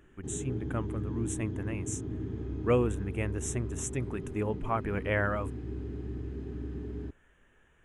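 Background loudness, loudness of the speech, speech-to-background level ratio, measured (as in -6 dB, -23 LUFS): -38.5 LUFS, -33.5 LUFS, 5.0 dB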